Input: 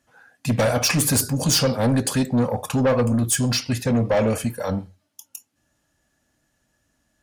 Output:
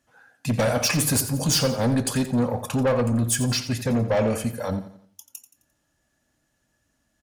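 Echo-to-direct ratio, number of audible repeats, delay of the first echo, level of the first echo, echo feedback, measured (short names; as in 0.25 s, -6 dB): -12.0 dB, 3, 87 ms, -13.0 dB, 42%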